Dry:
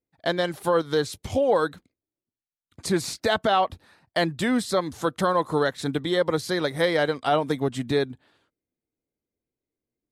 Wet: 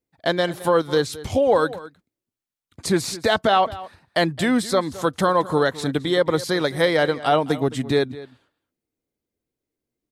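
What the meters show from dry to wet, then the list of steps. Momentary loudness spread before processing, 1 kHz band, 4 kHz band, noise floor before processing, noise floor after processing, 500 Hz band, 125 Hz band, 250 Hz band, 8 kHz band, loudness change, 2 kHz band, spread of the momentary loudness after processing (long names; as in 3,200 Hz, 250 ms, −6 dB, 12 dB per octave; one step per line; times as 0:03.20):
6 LU, +3.5 dB, +3.5 dB, below −85 dBFS, below −85 dBFS, +3.5 dB, +3.5 dB, +3.5 dB, +3.5 dB, +3.5 dB, +3.5 dB, 7 LU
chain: slap from a distant wall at 37 metres, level −17 dB
level +3.5 dB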